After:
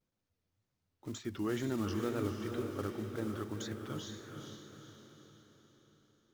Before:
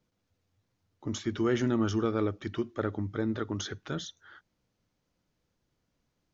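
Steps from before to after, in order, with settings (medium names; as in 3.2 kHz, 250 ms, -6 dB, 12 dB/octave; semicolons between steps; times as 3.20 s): block-companded coder 5-bit; wow and flutter 120 cents; echo that smears into a reverb 474 ms, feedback 48%, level -5 dB; trim -8 dB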